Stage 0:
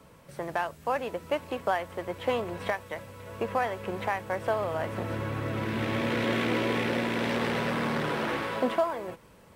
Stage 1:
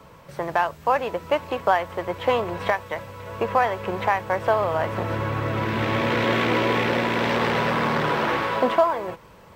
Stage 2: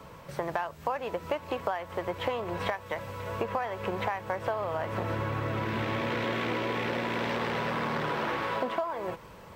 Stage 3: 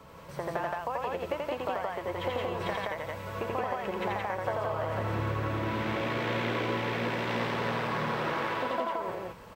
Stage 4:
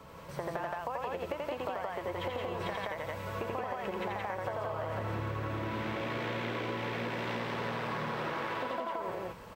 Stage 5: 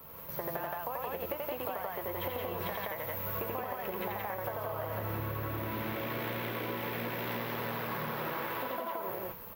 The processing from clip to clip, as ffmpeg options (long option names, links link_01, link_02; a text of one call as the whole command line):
ffmpeg -i in.wav -af "equalizer=frequency=250:width_type=o:width=0.67:gain=-4,equalizer=frequency=1000:width_type=o:width=0.67:gain=4,equalizer=frequency=10000:width_type=o:width=0.67:gain=-9,volume=6.5dB" out.wav
ffmpeg -i in.wav -af "acompressor=threshold=-28dB:ratio=6" out.wav
ffmpeg -i in.wav -af "aecho=1:1:84.55|172:0.794|0.891,volume=-4dB" out.wav
ffmpeg -i in.wav -af "acompressor=threshold=-32dB:ratio=6" out.wav
ffmpeg -i in.wav -filter_complex "[0:a]asplit=2[link_01][link_02];[link_02]aeval=exprs='sgn(val(0))*max(abs(val(0))-0.00266,0)':channel_layout=same,volume=-6dB[link_03];[link_01][link_03]amix=inputs=2:normalize=0,aexciter=amount=15.1:drive=8.3:freq=12000,flanger=delay=8.4:depth=4.1:regen=-72:speed=0.66:shape=sinusoidal" out.wav